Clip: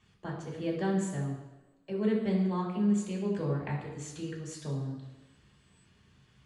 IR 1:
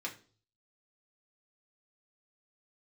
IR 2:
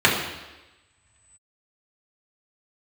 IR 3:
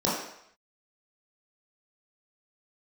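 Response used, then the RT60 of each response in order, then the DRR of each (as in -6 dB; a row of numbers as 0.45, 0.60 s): 2; 0.40, 1.1, 0.70 s; -2.0, -5.0, -8.5 dB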